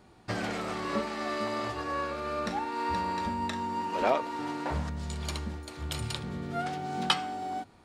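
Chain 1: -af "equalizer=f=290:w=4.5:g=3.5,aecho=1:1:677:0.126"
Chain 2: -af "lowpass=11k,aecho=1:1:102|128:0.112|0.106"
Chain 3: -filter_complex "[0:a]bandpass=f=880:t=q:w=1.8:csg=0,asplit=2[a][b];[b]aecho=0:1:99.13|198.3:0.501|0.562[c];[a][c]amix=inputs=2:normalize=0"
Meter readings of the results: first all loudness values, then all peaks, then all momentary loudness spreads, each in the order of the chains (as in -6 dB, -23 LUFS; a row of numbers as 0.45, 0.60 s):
-32.5, -32.5, -34.5 LUFS; -9.5, -9.5, -16.5 dBFS; 7, 8, 16 LU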